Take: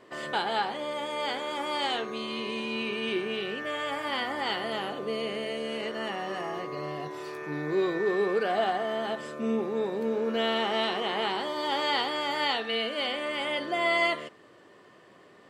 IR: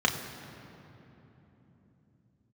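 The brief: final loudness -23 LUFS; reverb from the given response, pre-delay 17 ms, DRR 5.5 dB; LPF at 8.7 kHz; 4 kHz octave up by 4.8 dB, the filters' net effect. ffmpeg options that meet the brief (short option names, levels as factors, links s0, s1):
-filter_complex "[0:a]lowpass=8700,equalizer=f=4000:t=o:g=7,asplit=2[s0][s1];[1:a]atrim=start_sample=2205,adelay=17[s2];[s1][s2]afir=irnorm=-1:irlink=0,volume=0.126[s3];[s0][s3]amix=inputs=2:normalize=0,volume=1.58"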